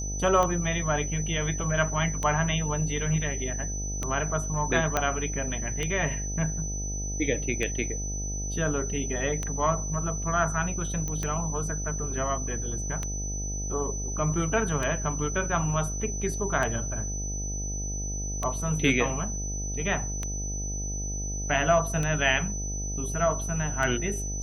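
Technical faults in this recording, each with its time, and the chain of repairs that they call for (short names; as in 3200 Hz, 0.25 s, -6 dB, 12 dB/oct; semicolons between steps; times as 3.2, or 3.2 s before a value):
buzz 50 Hz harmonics 16 -33 dBFS
tick 33 1/3 rpm -15 dBFS
tone 6000 Hz -34 dBFS
4.97 pop -9 dBFS
11.08 pop -19 dBFS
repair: de-click; notch 6000 Hz, Q 30; de-hum 50 Hz, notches 16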